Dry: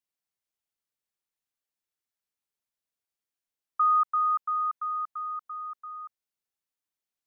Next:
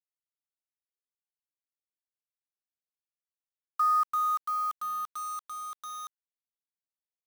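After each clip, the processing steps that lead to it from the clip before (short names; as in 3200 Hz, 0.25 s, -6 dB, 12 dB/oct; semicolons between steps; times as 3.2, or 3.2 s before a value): bell 1300 Hz -10 dB 0.28 oct; bit-crush 8-bit; gain +5.5 dB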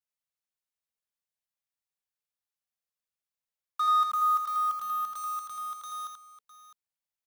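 overloaded stage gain 24 dB; elliptic band-stop 220–450 Hz, stop band 40 dB; tapped delay 83/657 ms -4.5/-14 dB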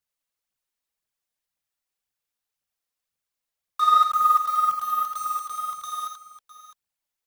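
phaser 1.9 Hz, delay 4.3 ms, feedback 47%; gain +5 dB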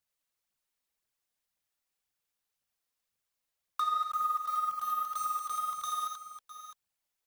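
compressor 4:1, threshold -31 dBFS, peak gain reduction 14.5 dB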